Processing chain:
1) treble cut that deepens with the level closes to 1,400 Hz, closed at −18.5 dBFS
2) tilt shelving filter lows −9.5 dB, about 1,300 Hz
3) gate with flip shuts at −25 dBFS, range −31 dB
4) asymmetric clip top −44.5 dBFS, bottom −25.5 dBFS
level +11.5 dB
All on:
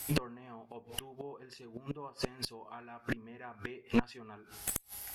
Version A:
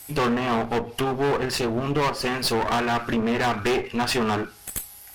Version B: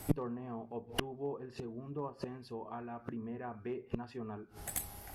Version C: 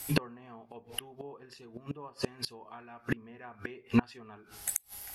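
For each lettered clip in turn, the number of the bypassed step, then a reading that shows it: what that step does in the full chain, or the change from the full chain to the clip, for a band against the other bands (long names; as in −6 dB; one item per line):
3, change in momentary loudness spread −12 LU
2, 2 kHz band −5.5 dB
4, distortion level −6 dB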